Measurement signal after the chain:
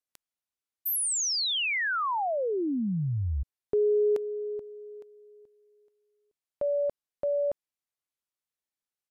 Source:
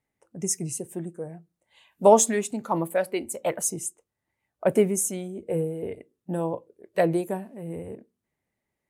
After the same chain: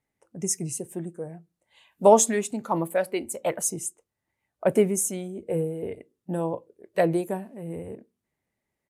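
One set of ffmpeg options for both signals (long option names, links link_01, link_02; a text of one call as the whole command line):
ffmpeg -i in.wav -af "aresample=32000,aresample=44100" out.wav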